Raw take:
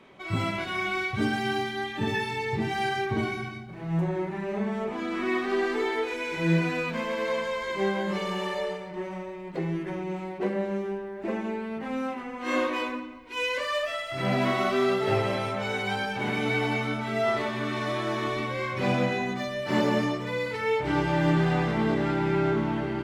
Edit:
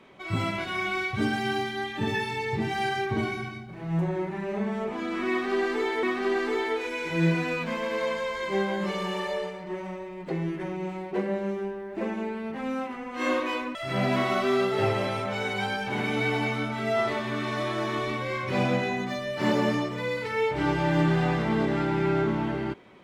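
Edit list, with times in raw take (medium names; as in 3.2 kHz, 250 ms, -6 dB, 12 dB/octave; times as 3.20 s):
5.30–6.03 s: loop, 2 plays
13.02–14.04 s: delete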